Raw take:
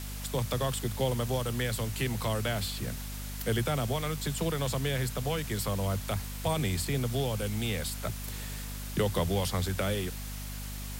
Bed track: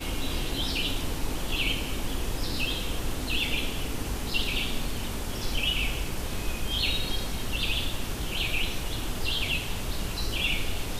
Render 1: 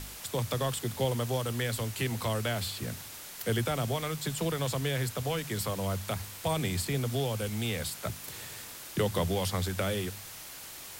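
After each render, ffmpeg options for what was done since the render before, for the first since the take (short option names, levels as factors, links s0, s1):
-af "bandreject=f=50:t=h:w=4,bandreject=f=100:t=h:w=4,bandreject=f=150:t=h:w=4,bandreject=f=200:t=h:w=4,bandreject=f=250:t=h:w=4"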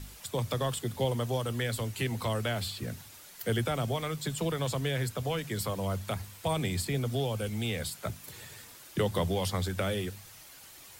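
-af "afftdn=nr=8:nf=-45"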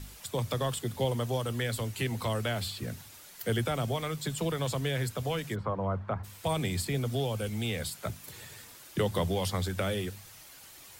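-filter_complex "[0:a]asplit=3[s0][s1][s2];[s0]afade=t=out:st=5.54:d=0.02[s3];[s1]lowpass=f=1200:t=q:w=1.6,afade=t=in:st=5.54:d=0.02,afade=t=out:st=6.23:d=0.02[s4];[s2]afade=t=in:st=6.23:d=0.02[s5];[s3][s4][s5]amix=inputs=3:normalize=0"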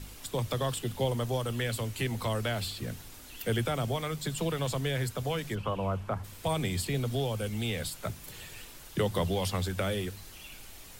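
-filter_complex "[1:a]volume=0.0794[s0];[0:a][s0]amix=inputs=2:normalize=0"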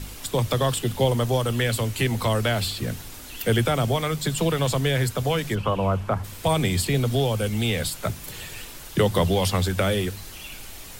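-af "volume=2.66"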